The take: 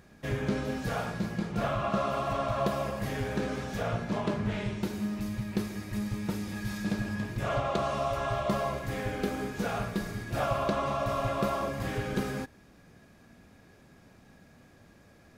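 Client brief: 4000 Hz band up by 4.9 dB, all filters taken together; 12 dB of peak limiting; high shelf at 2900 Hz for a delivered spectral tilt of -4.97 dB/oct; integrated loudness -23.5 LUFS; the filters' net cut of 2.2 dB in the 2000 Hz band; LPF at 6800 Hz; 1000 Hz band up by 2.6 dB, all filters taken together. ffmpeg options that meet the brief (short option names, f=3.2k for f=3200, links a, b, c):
-af "lowpass=6.8k,equalizer=f=1k:t=o:g=4.5,equalizer=f=2k:t=o:g=-8,highshelf=f=2.9k:g=6.5,equalizer=f=4k:t=o:g=4,volume=11.5dB,alimiter=limit=-14dB:level=0:latency=1"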